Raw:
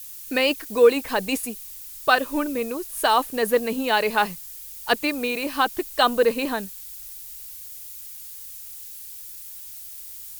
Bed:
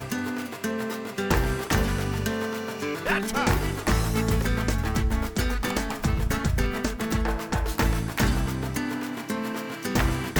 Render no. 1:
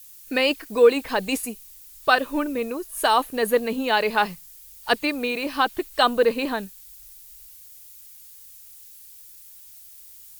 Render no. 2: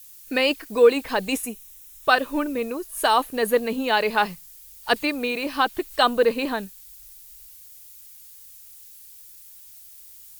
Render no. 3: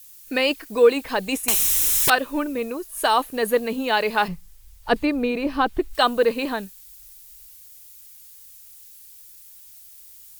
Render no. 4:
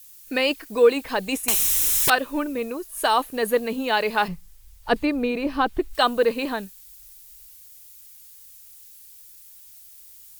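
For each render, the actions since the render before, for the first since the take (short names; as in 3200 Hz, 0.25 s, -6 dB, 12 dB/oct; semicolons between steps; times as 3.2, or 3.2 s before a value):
noise print and reduce 7 dB
1.32–2.1 notch 4600 Hz, Q 5.4; 4.96–5.96 upward compressor, threshold -34 dBFS
1.48–2.1 spectral compressor 10:1; 4.28–5.95 tilt -3 dB/oct
gain -1 dB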